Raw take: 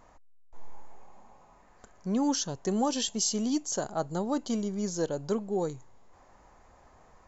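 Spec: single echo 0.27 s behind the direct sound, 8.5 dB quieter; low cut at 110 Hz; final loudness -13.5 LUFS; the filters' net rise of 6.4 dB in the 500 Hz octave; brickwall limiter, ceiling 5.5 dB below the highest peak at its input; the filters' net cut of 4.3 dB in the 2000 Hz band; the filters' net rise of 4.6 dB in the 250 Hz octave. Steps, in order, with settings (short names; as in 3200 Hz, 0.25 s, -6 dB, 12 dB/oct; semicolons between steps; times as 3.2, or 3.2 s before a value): HPF 110 Hz; bell 250 Hz +4 dB; bell 500 Hz +7 dB; bell 2000 Hz -7 dB; limiter -18 dBFS; echo 0.27 s -8.5 dB; gain +14 dB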